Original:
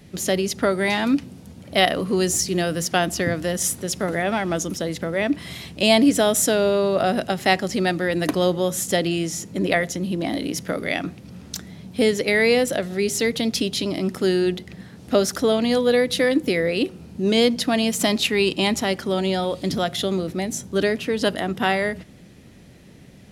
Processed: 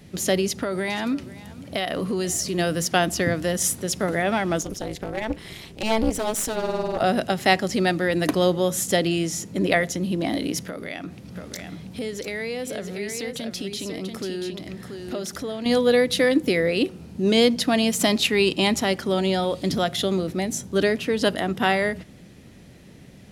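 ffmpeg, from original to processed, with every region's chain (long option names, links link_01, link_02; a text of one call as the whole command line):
ffmpeg -i in.wav -filter_complex "[0:a]asettb=1/sr,asplit=3[link_01][link_02][link_03];[link_01]atrim=end=0.464[link_04];[link_02]atrim=start=0.46:end=2.59,asetpts=PTS-STARTPTS,afade=type=in:duration=0.004:curve=qsin,afade=type=out:start_time=2.126:duration=0.004:curve=qsin,acompressor=threshold=-21dB:ratio=6:attack=3.2:release=140:knee=1:detection=peak,aecho=1:1:484:0.112,atrim=end_sample=93933[link_05];[link_03]atrim=start=2.586[link_06];[link_04][link_05]acrossfade=duration=0.004:curve1=hsin:curve2=qsin[link_07];[link_07][link_06]acrossfade=duration=0.004:curve1=qsin:curve2=hsin,asettb=1/sr,asplit=3[link_08][link_09][link_10];[link_08]atrim=end=4.614[link_11];[link_09]atrim=start=4.61:end=7.01,asetpts=PTS-STARTPTS,afade=type=in:duration=0.004:curve=qsin,afade=type=out:start_time=2.396:duration=0.004:curve=qsin,aeval=exprs='clip(val(0),-1,0.0794)':channel_layout=same,tremolo=f=220:d=0.974[link_12];[link_10]atrim=start=7.006[link_13];[link_11][link_12]acrossfade=duration=0.004:curve1=hsin:curve2=qsin[link_14];[link_14][link_13]acrossfade=duration=0.004:curve1=qsin:curve2=hsin,asettb=1/sr,asplit=3[link_15][link_16][link_17];[link_15]atrim=end=10.674[link_18];[link_16]atrim=start=10.67:end=15.66,asetpts=PTS-STARTPTS,afade=type=in:duration=0.004:curve=qsin,afade=type=out:start_time=4.986:duration=0.004:curve=qsin,acompressor=threshold=-32dB:ratio=2.5:attack=3.2:release=140:knee=1:detection=peak,aecho=1:1:685:0.501,atrim=end_sample=220059[link_19];[link_17]atrim=start=15.656[link_20];[link_18][link_19]acrossfade=duration=0.004:curve1=hsin:curve2=qsin[link_21];[link_21][link_20]acrossfade=duration=0.004:curve1=qsin:curve2=hsin" out.wav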